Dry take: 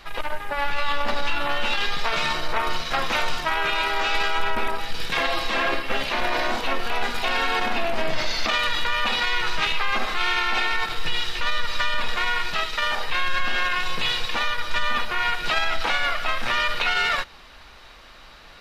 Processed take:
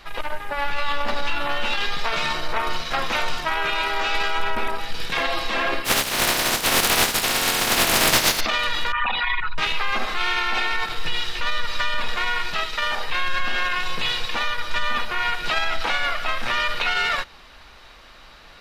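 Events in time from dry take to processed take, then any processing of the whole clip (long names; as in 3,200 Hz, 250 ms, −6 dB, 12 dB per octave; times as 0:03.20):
0:05.84–0:08.39: compressing power law on the bin magnitudes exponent 0.29
0:08.92–0:09.58: spectral envelope exaggerated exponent 3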